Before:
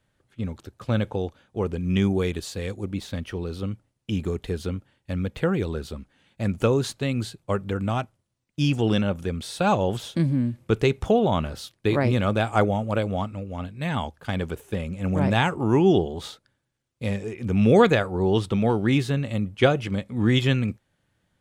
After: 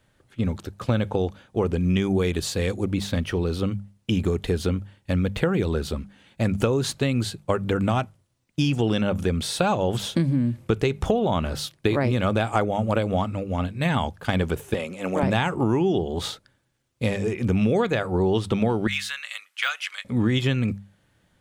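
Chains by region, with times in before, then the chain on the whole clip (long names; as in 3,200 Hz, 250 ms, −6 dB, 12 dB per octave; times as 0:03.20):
0:14.74–0:15.23: high-pass filter 360 Hz + parametric band 1,600 Hz −3.5 dB 0.23 octaves
0:18.87–0:20.05: de-essing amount 75% + high-pass filter 1,400 Hz 24 dB per octave
whole clip: mains-hum notches 50/100/150/200 Hz; downward compressor 10 to 1, threshold −25 dBFS; level +7 dB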